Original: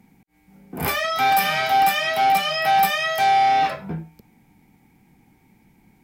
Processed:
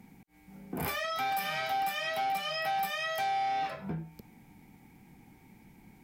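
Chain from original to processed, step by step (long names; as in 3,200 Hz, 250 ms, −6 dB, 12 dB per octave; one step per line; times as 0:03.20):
downward compressor 3 to 1, threshold −35 dBFS, peak gain reduction 15 dB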